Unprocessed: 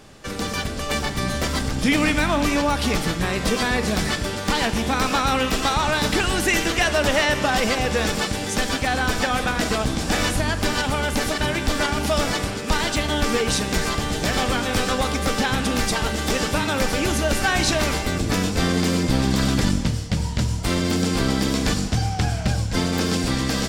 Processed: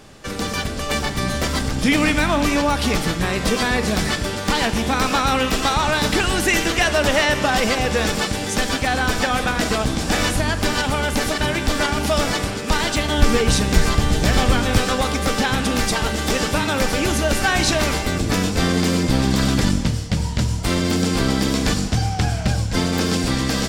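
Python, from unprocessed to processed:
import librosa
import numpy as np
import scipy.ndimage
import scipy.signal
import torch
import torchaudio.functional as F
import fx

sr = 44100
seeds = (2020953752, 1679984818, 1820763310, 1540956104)

y = fx.low_shelf(x, sr, hz=140.0, db=10.0, at=(13.18, 14.78))
y = F.gain(torch.from_numpy(y), 2.0).numpy()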